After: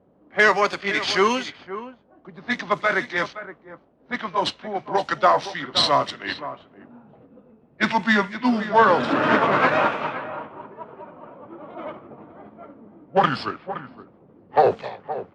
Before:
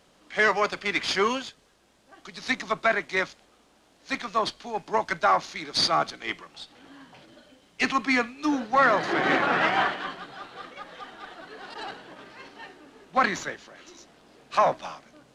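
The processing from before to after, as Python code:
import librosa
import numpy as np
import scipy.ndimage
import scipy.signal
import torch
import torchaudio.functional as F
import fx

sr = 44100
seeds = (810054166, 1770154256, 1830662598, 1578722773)

y = fx.pitch_glide(x, sr, semitones=-6.0, runs='starting unshifted')
y = scipy.signal.sosfilt(scipy.signal.butter(2, 72.0, 'highpass', fs=sr, output='sos'), y)
y = y + 10.0 ** (-13.0 / 20.0) * np.pad(y, (int(518 * sr / 1000.0), 0))[:len(y)]
y = fx.env_lowpass(y, sr, base_hz=530.0, full_db=-23.5)
y = F.gain(torch.from_numpy(y), 5.5).numpy()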